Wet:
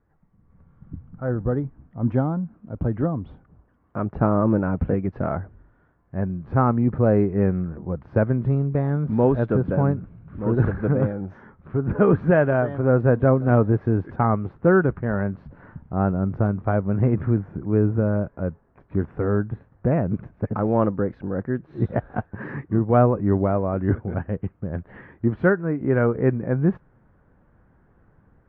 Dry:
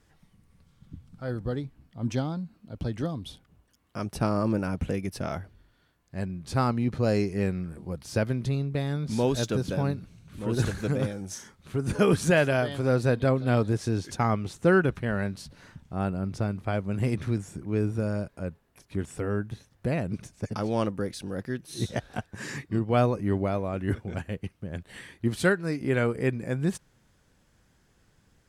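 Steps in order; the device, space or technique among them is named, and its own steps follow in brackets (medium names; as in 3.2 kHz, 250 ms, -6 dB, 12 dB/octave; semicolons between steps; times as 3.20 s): action camera in a waterproof case (low-pass 1.5 kHz 24 dB/octave; level rider gain up to 11 dB; trim -3.5 dB; AAC 48 kbps 32 kHz)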